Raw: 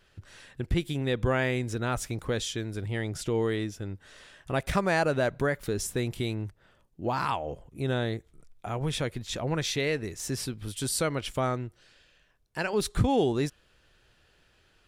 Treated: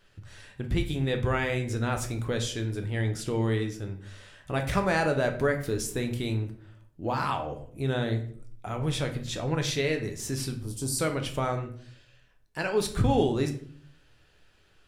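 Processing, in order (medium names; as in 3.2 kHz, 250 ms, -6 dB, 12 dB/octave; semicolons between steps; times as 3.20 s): 10.58–10.99 s: high-order bell 2.3 kHz -13.5 dB; on a send: reverberation RT60 0.55 s, pre-delay 7 ms, DRR 4.5 dB; on the sum: trim -1 dB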